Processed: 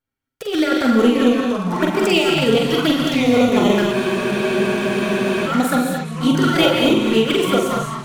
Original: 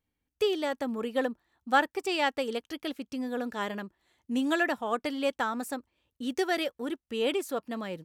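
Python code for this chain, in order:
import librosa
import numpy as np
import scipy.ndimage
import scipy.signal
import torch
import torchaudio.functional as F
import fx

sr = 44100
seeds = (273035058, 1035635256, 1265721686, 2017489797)

y = fx.fade_out_tail(x, sr, length_s=0.74)
y = fx.peak_eq(y, sr, hz=1400.0, db=14.5, octaves=0.2)
y = fx.leveller(y, sr, passes=3)
y = fx.over_compress(y, sr, threshold_db=-19.0, ratio=-0.5)
y = fx.echo_pitch(y, sr, ms=485, semitones=-4, count=3, db_per_echo=-6.0)
y = fx.env_flanger(y, sr, rest_ms=7.6, full_db=-15.5)
y = fx.doubler(y, sr, ms=45.0, db=-4)
y = fx.echo_stepped(y, sr, ms=136, hz=3000.0, octaves=0.7, feedback_pct=70, wet_db=-9.5)
y = fx.rev_gated(y, sr, seeds[0], gate_ms=250, shape='rising', drr_db=2.0)
y = fx.spec_freeze(y, sr, seeds[1], at_s=3.94, hold_s=1.52)
y = y * 10.0 ** (3.0 / 20.0)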